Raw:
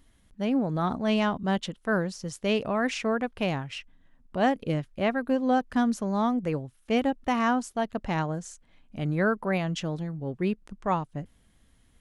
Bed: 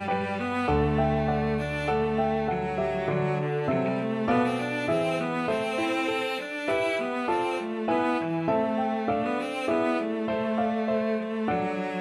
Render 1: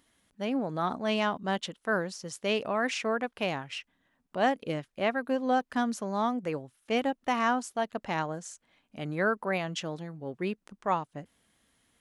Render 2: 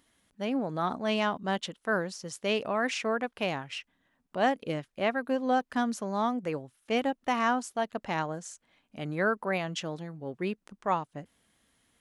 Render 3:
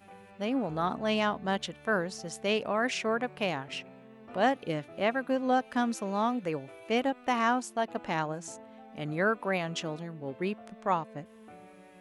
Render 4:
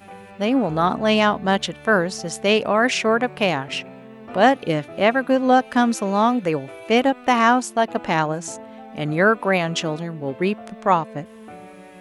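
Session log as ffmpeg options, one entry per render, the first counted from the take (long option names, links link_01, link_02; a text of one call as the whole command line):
ffmpeg -i in.wav -af "highpass=frequency=400:poles=1" out.wav
ffmpeg -i in.wav -af anull out.wav
ffmpeg -i in.wav -i bed.wav -filter_complex "[1:a]volume=-24dB[link_01];[0:a][link_01]amix=inputs=2:normalize=0" out.wav
ffmpeg -i in.wav -af "volume=11dB" out.wav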